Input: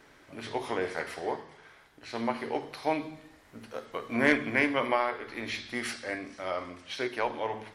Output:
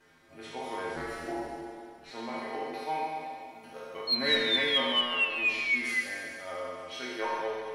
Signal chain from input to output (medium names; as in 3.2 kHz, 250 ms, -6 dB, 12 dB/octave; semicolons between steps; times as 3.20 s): spectral sustain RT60 2.13 s; 2.84–3.64 s: bass shelf 170 Hz -9.5 dB; 4.07–6.00 s: painted sound fall 2–4.3 kHz -22 dBFS; inharmonic resonator 80 Hz, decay 0.27 s, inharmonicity 0.008; 0.96–2.11 s: frequency shift -96 Hz; in parallel at -12 dB: saturation -24 dBFS, distortion -14 dB; on the sum: thinning echo 142 ms, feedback 59%, level -12 dB; trim -1.5 dB